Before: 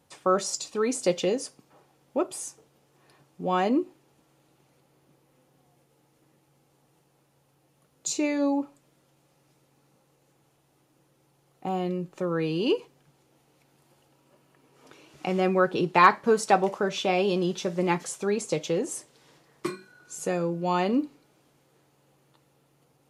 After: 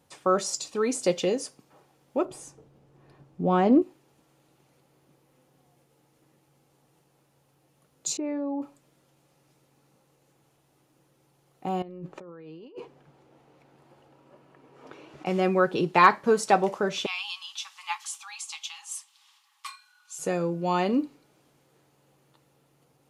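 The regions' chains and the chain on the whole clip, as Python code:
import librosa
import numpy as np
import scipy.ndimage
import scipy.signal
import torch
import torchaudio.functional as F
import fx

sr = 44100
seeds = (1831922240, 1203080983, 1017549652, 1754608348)

y = fx.chain(x, sr, fx.tilt_eq(slope=-3.0),
    fx.doppler_dist(depth_ms=0.1), at=(2.25, 3.82))
y = fx.chain(y, sr, fx.lowpass(hz=1200.0, slope=12),
    fx.level_steps(step_db=15), at=(8.17, 8.62))
y = fx.chain(y, sr, fx.lowpass(hz=1000.0, slope=6),
    fx.low_shelf(hz=310.0, db=-7.5),
    fx.over_compress(threshold_db=-43.0, ratio=-1.0), at=(11.82, 15.26))
y = fx.chain(y, sr, fx.cheby_ripple_highpass(hz=800.0, ripple_db=9),
    fx.high_shelf(hz=3600.0, db=8.5), at=(17.06, 20.19))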